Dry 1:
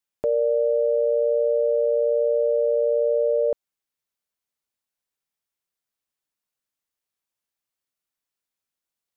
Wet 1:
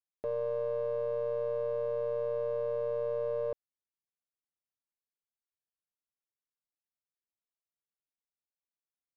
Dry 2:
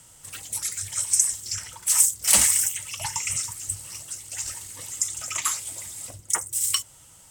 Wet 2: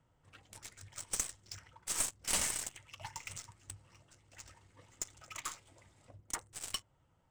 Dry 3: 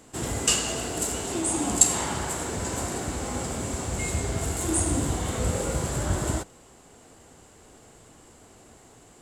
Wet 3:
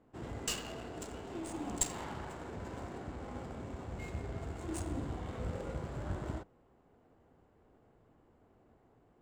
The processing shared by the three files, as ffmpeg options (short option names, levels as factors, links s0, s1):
-af "aeval=exprs='(tanh(2.51*val(0)+0.6)-tanh(0.6))/2.51':c=same,adynamicsmooth=sensitivity=5:basefreq=1500,volume=0.355"